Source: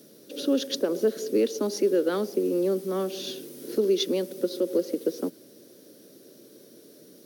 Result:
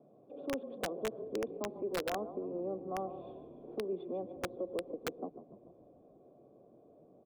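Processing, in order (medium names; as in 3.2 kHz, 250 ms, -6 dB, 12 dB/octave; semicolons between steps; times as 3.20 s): graphic EQ 125/1000/2000 Hz +12/-7/-9 dB; in parallel at -1.5 dB: compression 12:1, threshold -36 dBFS, peak gain reduction 18 dB; on the sum: cascade formant filter a; on a send: frequency-shifting echo 146 ms, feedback 58%, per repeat -36 Hz, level -12 dB; on the sum: integer overflow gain 36 dB; trim +8 dB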